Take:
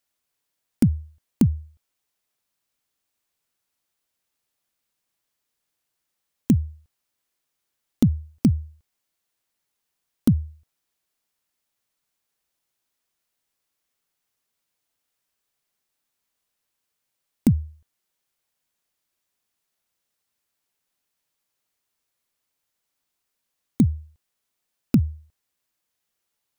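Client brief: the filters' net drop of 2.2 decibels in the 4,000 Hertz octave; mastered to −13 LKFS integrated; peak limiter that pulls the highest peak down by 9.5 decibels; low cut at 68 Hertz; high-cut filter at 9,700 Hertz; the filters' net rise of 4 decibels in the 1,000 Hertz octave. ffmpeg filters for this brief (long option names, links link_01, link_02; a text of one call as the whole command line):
ffmpeg -i in.wav -af "highpass=68,lowpass=9700,equalizer=frequency=1000:width_type=o:gain=5.5,equalizer=frequency=4000:width_type=o:gain=-3,volume=16.5dB,alimiter=limit=0dB:level=0:latency=1" out.wav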